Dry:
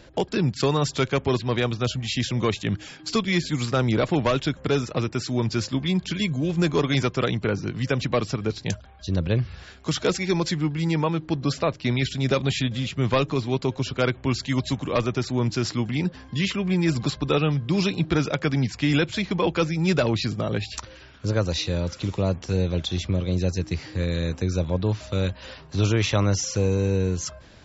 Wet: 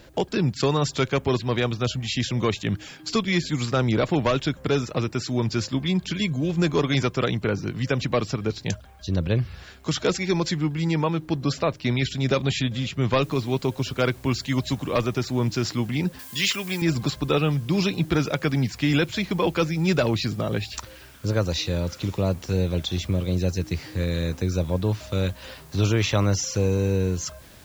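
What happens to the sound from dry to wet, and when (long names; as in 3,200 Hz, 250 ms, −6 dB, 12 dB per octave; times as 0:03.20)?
0:13.23: noise floor change −68 dB −54 dB
0:16.19–0:16.82: spectral tilt +3.5 dB per octave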